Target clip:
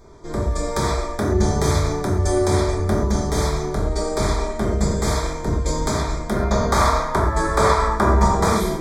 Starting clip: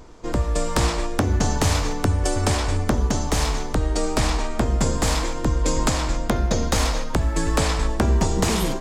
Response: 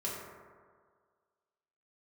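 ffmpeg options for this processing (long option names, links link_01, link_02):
-filter_complex "[0:a]asuperstop=centerf=2800:order=12:qfactor=3.6,asettb=1/sr,asplit=3[link_01][link_02][link_03];[link_01]atrim=end=6.364[link_04];[link_02]atrim=start=6.36:end=8.49,asetpts=PTS-STARTPTS,afade=type=in:duration=0.004:curve=qsin,afade=type=out:start_time=2.126:duration=0.004:curve=qsin,equalizer=frequency=1100:width_type=o:width=1.4:gain=11.5[link_05];[link_03]atrim=start=8.486[link_06];[link_04][link_05]acrossfade=duration=0.004:curve1=hsin:curve2=qsin[link_07];[link_07][link_06]acrossfade=duration=0.004:curve1=qsin:curve2=hsin[link_08];[1:a]atrim=start_sample=2205,atrim=end_sample=6174[link_09];[link_08][link_09]afir=irnorm=-1:irlink=0,volume=-2dB"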